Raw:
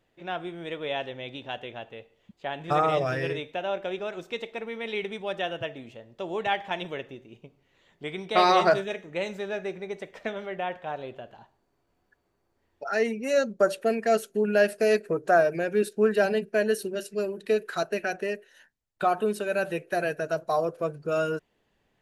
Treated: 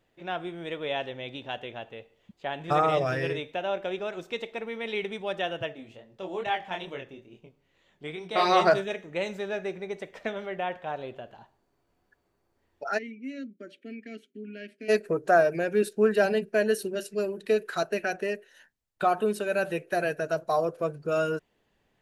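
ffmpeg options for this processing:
ffmpeg -i in.wav -filter_complex "[0:a]asplit=3[link_01][link_02][link_03];[link_01]afade=type=out:start_time=5.72:duration=0.02[link_04];[link_02]flanger=delay=22.5:depth=5:speed=2.3,afade=type=in:start_time=5.72:duration=0.02,afade=type=out:start_time=8.51:duration=0.02[link_05];[link_03]afade=type=in:start_time=8.51:duration=0.02[link_06];[link_04][link_05][link_06]amix=inputs=3:normalize=0,asplit=3[link_07][link_08][link_09];[link_07]afade=type=out:start_time=12.97:duration=0.02[link_10];[link_08]asplit=3[link_11][link_12][link_13];[link_11]bandpass=frequency=270:width_type=q:width=8,volume=0dB[link_14];[link_12]bandpass=frequency=2290:width_type=q:width=8,volume=-6dB[link_15];[link_13]bandpass=frequency=3010:width_type=q:width=8,volume=-9dB[link_16];[link_14][link_15][link_16]amix=inputs=3:normalize=0,afade=type=in:start_time=12.97:duration=0.02,afade=type=out:start_time=14.88:duration=0.02[link_17];[link_09]afade=type=in:start_time=14.88:duration=0.02[link_18];[link_10][link_17][link_18]amix=inputs=3:normalize=0" out.wav

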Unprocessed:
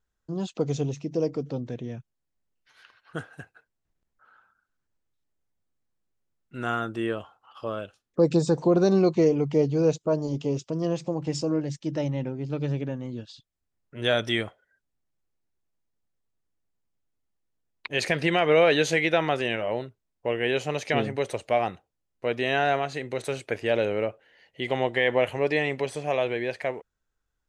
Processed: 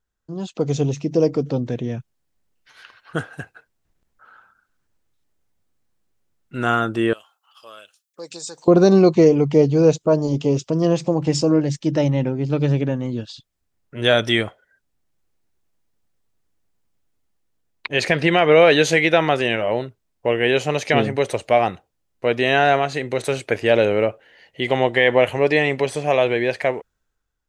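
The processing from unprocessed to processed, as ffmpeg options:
ffmpeg -i in.wav -filter_complex "[0:a]asettb=1/sr,asplit=3[link_01][link_02][link_03];[link_01]atrim=end=7.134[link_04];[link_02]atrim=start=7.13:end=8.68,asetpts=PTS-STARTPTS,afade=type=in:duration=0.004:curve=qsin,afade=type=out:start_time=1.546:duration=0.004:curve=qsin,aderivative[link_05];[link_03]atrim=start=8.676[link_06];[link_04][link_05]acrossfade=duration=0.004:curve1=hsin:curve2=qsin[link_07];[link_07][link_06]acrossfade=duration=0.004:curve1=qsin:curve2=hsin,asettb=1/sr,asplit=3[link_08][link_09][link_10];[link_08]atrim=end=17.874[link_11];[link_09]atrim=start=17.87:end=18.6,asetpts=PTS-STARTPTS,afade=type=in:duration=0.004:curve=qsin,afade=type=out:start_time=0.726:duration=0.004:curve=qsin,highshelf=frequency=7800:gain=-9[link_12];[link_10]atrim=start=18.596[link_13];[link_11][link_12]acrossfade=duration=0.004:curve1=hsin:curve2=qsin[link_14];[link_14][link_13]acrossfade=duration=0.004:curve1=qsin:curve2=hsin,dynaudnorm=framelen=120:gausssize=11:maxgain=9.5dB" out.wav

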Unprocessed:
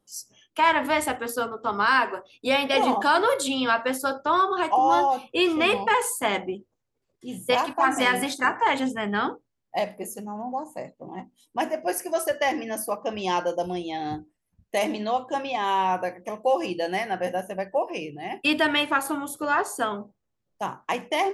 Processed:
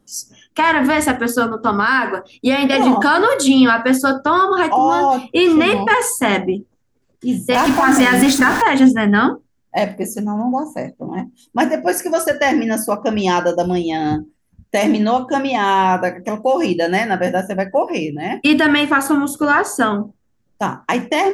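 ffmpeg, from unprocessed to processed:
ffmpeg -i in.wav -filter_complex "[0:a]asettb=1/sr,asplit=3[link_01][link_02][link_03];[link_01]atrim=end=1.784[link_04];[link_02]atrim=start=1.78:end=2.73,asetpts=PTS-STARTPTS,afade=type=in:duration=0.004:curve=qsin,afade=type=out:start_time=0.946:duration=0.004:curve=qsin,acompressor=threshold=-22dB:ratio=6:attack=3.2:release=140:knee=1:detection=peak[link_05];[link_03]atrim=start=2.726[link_06];[link_04][link_05]acrossfade=duration=0.004:curve1=hsin:curve2=qsin[link_07];[link_07][link_06]acrossfade=duration=0.004:curve1=qsin:curve2=hsin,asettb=1/sr,asplit=3[link_08][link_09][link_10];[link_08]atrim=end=7.544[link_11];[link_09]atrim=start=7.54:end=8.62,asetpts=PTS-STARTPTS,afade=type=in:duration=0.004:curve=qsin,afade=type=out:start_time=1.076:duration=0.004:curve=qsin,aeval=exprs='val(0)+0.5*0.0447*sgn(val(0))':channel_layout=same[link_12];[link_10]atrim=start=8.616[link_13];[link_11][link_12]acrossfade=duration=0.004:curve1=hsin:curve2=qsin[link_14];[link_14][link_13]acrossfade=duration=0.004:curve1=qsin:curve2=hsin,lowshelf=frequency=260:gain=8,alimiter=limit=-14.5dB:level=0:latency=1:release=50,equalizer=frequency=250:width_type=o:width=0.67:gain=7,equalizer=frequency=1600:width_type=o:width=0.67:gain=6,equalizer=frequency=6300:width_type=o:width=0.67:gain=4,volume=7dB" out.wav

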